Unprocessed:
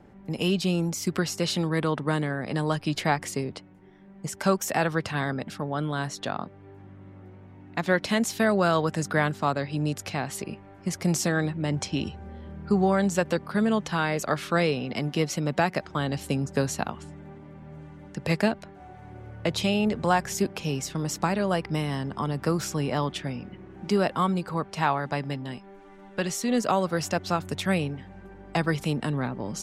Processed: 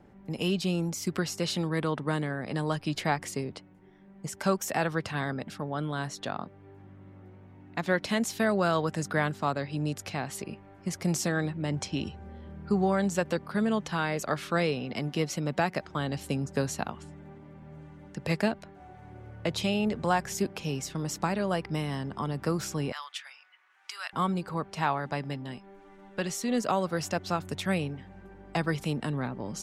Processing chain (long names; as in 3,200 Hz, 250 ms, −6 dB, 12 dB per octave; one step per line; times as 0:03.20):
0:22.92–0:24.13: high-pass filter 1,200 Hz 24 dB per octave
level −3.5 dB